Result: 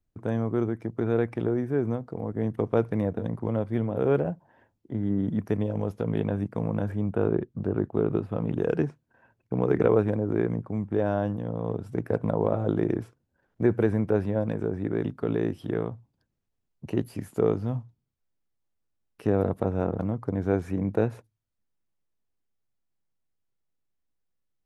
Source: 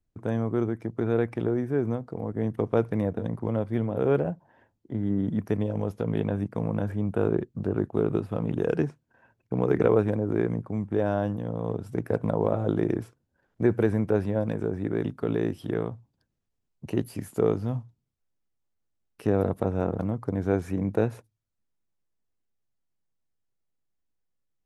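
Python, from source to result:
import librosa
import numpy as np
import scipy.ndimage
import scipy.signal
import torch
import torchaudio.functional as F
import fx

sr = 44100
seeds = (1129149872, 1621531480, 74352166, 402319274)

y = fx.high_shelf(x, sr, hz=4700.0, db=fx.steps((0.0, -3.0), (7.1, -11.5), (8.37, -6.0)))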